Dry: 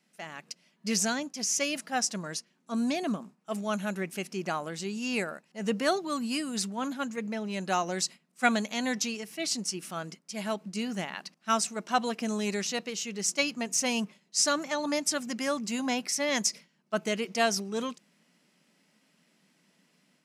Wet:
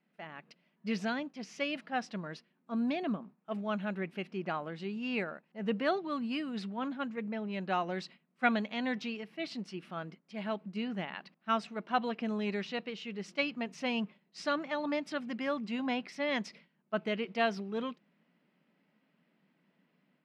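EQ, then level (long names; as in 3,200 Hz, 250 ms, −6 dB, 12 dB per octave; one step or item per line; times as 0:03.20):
dynamic equaliser 3,500 Hz, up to +6 dB, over −46 dBFS, Q 0.86
high-frequency loss of the air 420 metres
−2.5 dB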